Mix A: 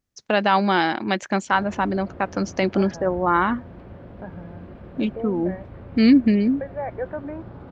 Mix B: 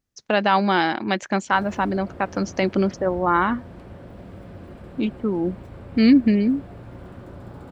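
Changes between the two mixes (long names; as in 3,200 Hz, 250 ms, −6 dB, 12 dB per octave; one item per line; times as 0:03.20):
second voice: muted
background: remove high-frequency loss of the air 220 metres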